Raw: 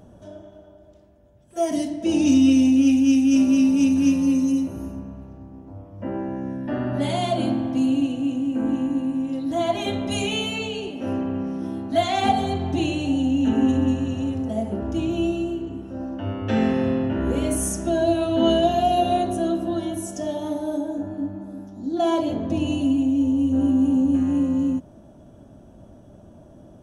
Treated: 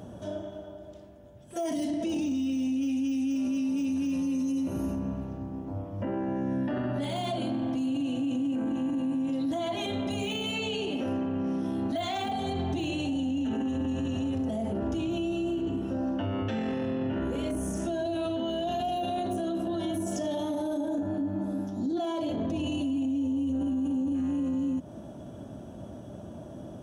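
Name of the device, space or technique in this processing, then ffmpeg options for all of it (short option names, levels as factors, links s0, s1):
broadcast voice chain: -af "highpass=78,deesser=0.85,acompressor=threshold=0.0355:ratio=3,equalizer=f=3300:t=o:w=0.38:g=3,alimiter=level_in=1.78:limit=0.0631:level=0:latency=1:release=15,volume=0.562,volume=1.78"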